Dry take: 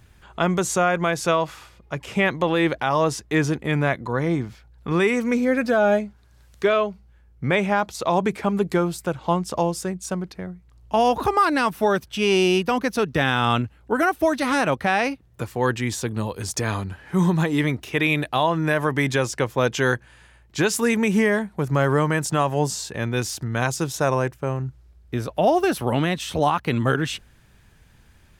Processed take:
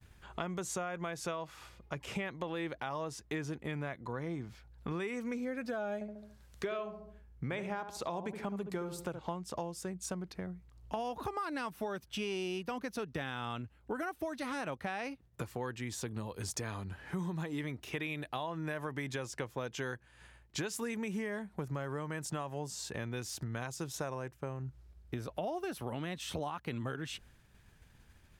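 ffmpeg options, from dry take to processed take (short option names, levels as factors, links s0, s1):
-filter_complex "[0:a]asettb=1/sr,asplit=3[s0][s1][s2];[s0]atrim=end=5.944[s3];[s1]atrim=start=5.94:end=9.21,asetpts=PTS-STARTPTS,afade=t=in:d=0.004:c=qsin,afade=t=out:st=3.266:d=0.004:c=qsin,asplit=2[s4][s5];[s5]adelay=71,lowpass=f=1100:p=1,volume=0.398,asplit=2[s6][s7];[s7]adelay=71,lowpass=f=1100:p=1,volume=0.45,asplit=2[s8][s9];[s9]adelay=71,lowpass=f=1100:p=1,volume=0.45,asplit=2[s10][s11];[s11]adelay=71,lowpass=f=1100:p=1,volume=0.45,asplit=2[s12][s13];[s13]adelay=71,lowpass=f=1100:p=1,volume=0.45[s14];[s4][s6][s8][s10][s12][s14]amix=inputs=6:normalize=0,atrim=end_sample=144207[s15];[s2]atrim=start=9.206[s16];[s3][s15]acrossfade=d=0.004:c1=hsin:c2=qsin[s17];[s17][s16]acrossfade=d=0.004:c1=qsin:c2=hsin,acompressor=threshold=0.0251:ratio=5,agate=range=0.0224:threshold=0.00355:ratio=3:detection=peak,volume=0.596"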